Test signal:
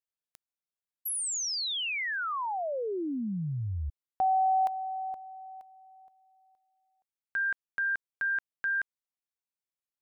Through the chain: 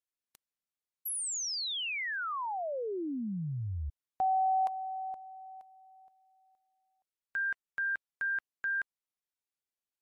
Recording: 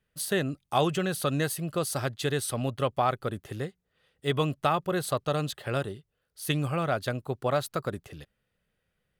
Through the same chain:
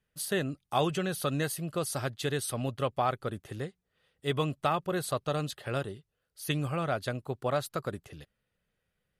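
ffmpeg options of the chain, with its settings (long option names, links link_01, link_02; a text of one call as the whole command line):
ffmpeg -i in.wav -af "volume=-2.5dB" -ar 44100 -c:a libmp3lame -b:a 56k out.mp3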